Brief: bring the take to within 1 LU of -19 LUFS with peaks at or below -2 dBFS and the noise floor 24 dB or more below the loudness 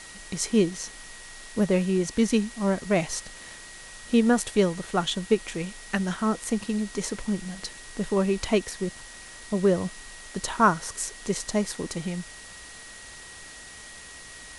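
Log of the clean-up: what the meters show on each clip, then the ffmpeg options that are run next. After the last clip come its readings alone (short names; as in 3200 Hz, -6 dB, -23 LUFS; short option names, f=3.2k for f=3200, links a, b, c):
steady tone 1900 Hz; tone level -47 dBFS; noise floor -44 dBFS; noise floor target -51 dBFS; loudness -27.0 LUFS; peak -8.0 dBFS; loudness target -19.0 LUFS
-> -af "bandreject=f=1.9k:w=30"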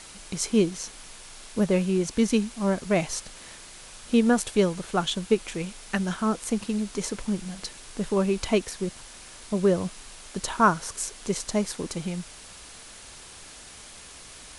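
steady tone none; noise floor -46 dBFS; noise floor target -51 dBFS
-> -af "afftdn=nr=6:nf=-46"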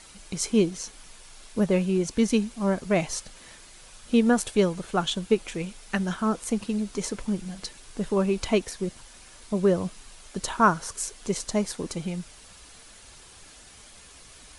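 noise floor -50 dBFS; noise floor target -51 dBFS
-> -af "afftdn=nr=6:nf=-50"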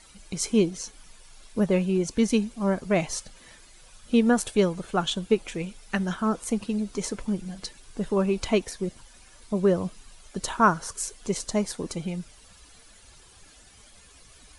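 noise floor -53 dBFS; loudness -27.0 LUFS; peak -8.0 dBFS; loudness target -19.0 LUFS
-> -af "volume=8dB,alimiter=limit=-2dB:level=0:latency=1"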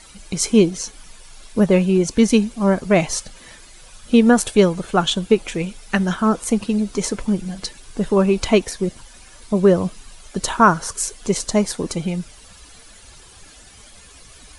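loudness -19.0 LUFS; peak -2.0 dBFS; noise floor -45 dBFS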